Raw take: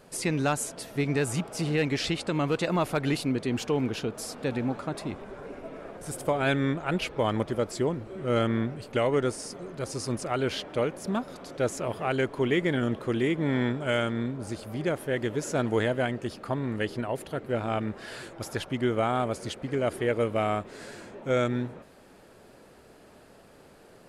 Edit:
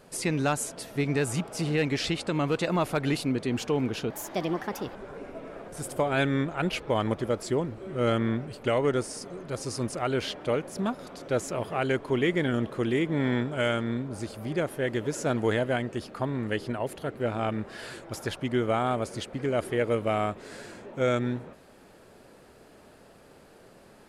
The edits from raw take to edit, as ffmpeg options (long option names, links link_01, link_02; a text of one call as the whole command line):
ffmpeg -i in.wav -filter_complex "[0:a]asplit=3[link_01][link_02][link_03];[link_01]atrim=end=4.104[link_04];[link_02]atrim=start=4.1:end=5.24,asetpts=PTS-STARTPTS,asetrate=59094,aresample=44100[link_05];[link_03]atrim=start=5.236[link_06];[link_04][link_05]acrossfade=duration=0.004:curve1=hsin:curve2=hsin[link_07];[link_07][link_06]acrossfade=duration=0.004:curve1=hsin:curve2=hsin" out.wav